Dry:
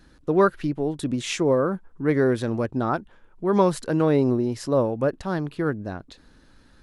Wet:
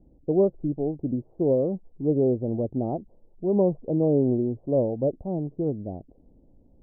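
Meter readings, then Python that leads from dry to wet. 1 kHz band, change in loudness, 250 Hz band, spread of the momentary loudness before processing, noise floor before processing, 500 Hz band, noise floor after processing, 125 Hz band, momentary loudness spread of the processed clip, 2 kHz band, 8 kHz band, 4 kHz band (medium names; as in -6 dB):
-12.0 dB, -2.0 dB, -1.5 dB, 8 LU, -55 dBFS, -1.5 dB, -58 dBFS, -1.5 dB, 8 LU, under -40 dB, under -40 dB, under -40 dB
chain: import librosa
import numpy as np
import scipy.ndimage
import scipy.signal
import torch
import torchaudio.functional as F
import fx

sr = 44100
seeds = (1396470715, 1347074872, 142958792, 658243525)

y = scipy.signal.sosfilt(scipy.signal.butter(8, 740.0, 'lowpass', fs=sr, output='sos'), x)
y = F.gain(torch.from_numpy(y), -1.5).numpy()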